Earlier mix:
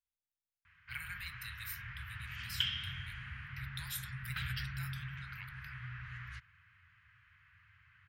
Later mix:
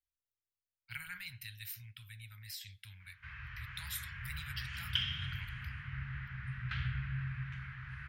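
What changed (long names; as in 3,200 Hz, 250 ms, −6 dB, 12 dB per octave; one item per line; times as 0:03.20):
background: entry +2.35 s
master: add low-shelf EQ 190 Hz +4.5 dB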